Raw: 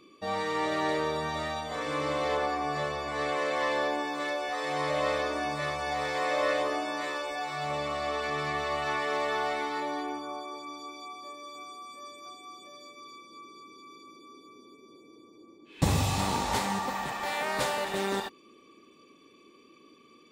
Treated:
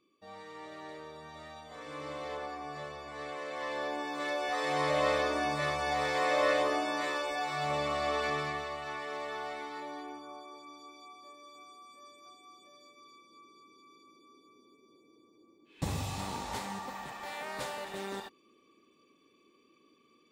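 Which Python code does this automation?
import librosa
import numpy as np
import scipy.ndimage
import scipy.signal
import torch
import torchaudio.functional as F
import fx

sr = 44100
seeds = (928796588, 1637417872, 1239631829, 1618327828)

y = fx.gain(x, sr, db=fx.line((1.13, -17.0), (2.08, -10.5), (3.46, -10.5), (4.52, 0.0), (8.28, 0.0), (8.77, -9.0)))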